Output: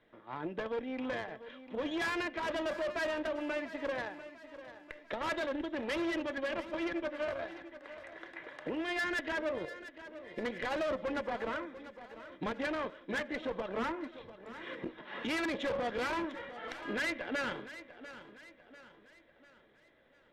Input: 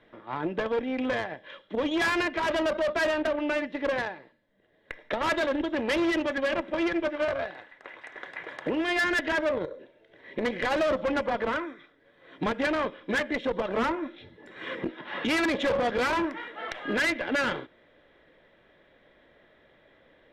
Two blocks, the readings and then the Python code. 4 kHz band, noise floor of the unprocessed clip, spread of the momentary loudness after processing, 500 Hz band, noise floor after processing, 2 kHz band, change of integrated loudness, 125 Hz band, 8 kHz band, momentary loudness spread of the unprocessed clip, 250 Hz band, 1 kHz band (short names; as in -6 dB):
-8.5 dB, -62 dBFS, 15 LU, -8.5 dB, -64 dBFS, -8.5 dB, -8.5 dB, -8.5 dB, -8.5 dB, 14 LU, -8.5 dB, -8.5 dB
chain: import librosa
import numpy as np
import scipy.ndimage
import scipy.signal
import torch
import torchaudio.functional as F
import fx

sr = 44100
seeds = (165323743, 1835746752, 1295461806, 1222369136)

y = fx.echo_feedback(x, sr, ms=695, feedback_pct=45, wet_db=-14)
y = y * 10.0 ** (-8.5 / 20.0)